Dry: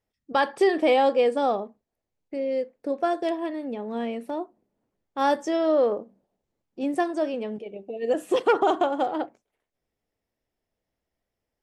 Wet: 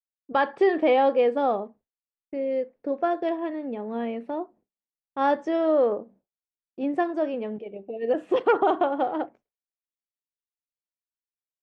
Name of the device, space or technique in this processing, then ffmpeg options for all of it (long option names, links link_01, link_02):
hearing-loss simulation: -af "lowpass=2600,agate=range=-33dB:threshold=-49dB:ratio=3:detection=peak"